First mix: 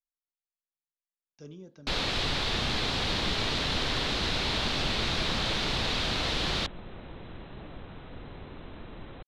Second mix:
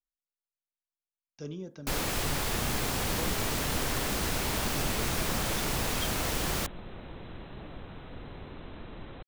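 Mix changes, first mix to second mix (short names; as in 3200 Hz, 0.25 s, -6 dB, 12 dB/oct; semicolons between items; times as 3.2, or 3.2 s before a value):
speech +6.5 dB; first sound: remove synth low-pass 3900 Hz, resonance Q 3.1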